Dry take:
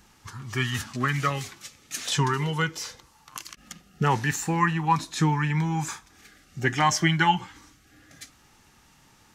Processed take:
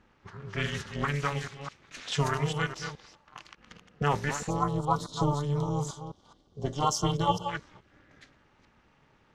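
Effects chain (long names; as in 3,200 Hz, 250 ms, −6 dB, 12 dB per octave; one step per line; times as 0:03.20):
delay that plays each chunk backwards 211 ms, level −8 dB
gain on a spectral selection 0:04.50–0:07.48, 1,200–3,000 Hz −22 dB
amplitude modulation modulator 290 Hz, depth 90%
low-pass that shuts in the quiet parts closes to 2,500 Hz, open at −21.5 dBFS
level −1 dB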